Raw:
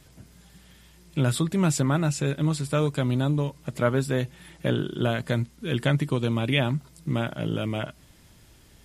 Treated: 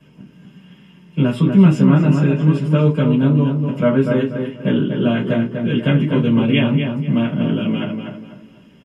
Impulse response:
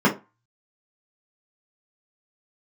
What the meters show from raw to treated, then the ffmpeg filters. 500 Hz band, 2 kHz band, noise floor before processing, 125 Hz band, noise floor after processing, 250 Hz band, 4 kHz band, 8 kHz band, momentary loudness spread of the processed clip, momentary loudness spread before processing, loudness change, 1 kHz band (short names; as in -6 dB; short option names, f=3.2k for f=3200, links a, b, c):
+7.5 dB, +4.5 dB, -55 dBFS, +9.0 dB, -47 dBFS, +12.5 dB, +3.5 dB, under -10 dB, 10 LU, 7 LU, +9.5 dB, +4.0 dB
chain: -filter_complex "[0:a]equalizer=f=2.8k:t=o:w=0.38:g=14.5,asplit=2[a][b];[b]adelay=244,lowpass=f=2.5k:p=1,volume=-5dB,asplit=2[c][d];[d]adelay=244,lowpass=f=2.5k:p=1,volume=0.34,asplit=2[e][f];[f]adelay=244,lowpass=f=2.5k:p=1,volume=0.34,asplit=2[g][h];[h]adelay=244,lowpass=f=2.5k:p=1,volume=0.34[i];[a][c][e][g][i]amix=inputs=5:normalize=0[j];[1:a]atrim=start_sample=2205[k];[j][k]afir=irnorm=-1:irlink=0,volume=-16.5dB"